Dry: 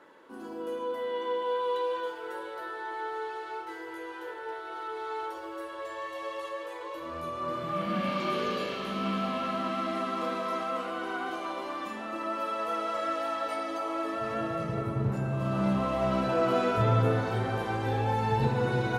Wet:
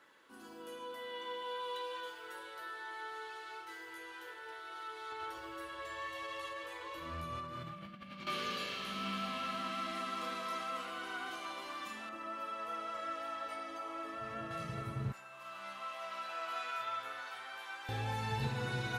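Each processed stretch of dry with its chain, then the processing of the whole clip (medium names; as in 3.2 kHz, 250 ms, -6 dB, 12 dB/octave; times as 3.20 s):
5.12–8.27 s: tone controls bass +10 dB, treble -5 dB + compressor with a negative ratio -35 dBFS
12.09–14.51 s: treble shelf 2.4 kHz -10 dB + band-stop 4.2 kHz
15.12–17.89 s: high-pass 1.1 kHz + peaking EQ 8.4 kHz -8 dB 2.8 oct + doubling 15 ms -6.5 dB
whole clip: amplifier tone stack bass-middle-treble 5-5-5; band-stop 920 Hz, Q 15; trim +6.5 dB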